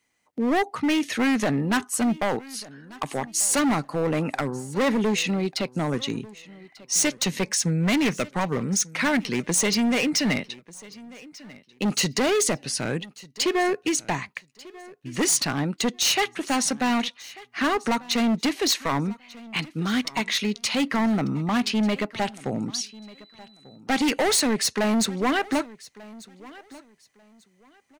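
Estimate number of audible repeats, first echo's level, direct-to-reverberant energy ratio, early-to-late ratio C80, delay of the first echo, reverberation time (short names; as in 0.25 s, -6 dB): 2, -21.0 dB, none, none, 1.192 s, none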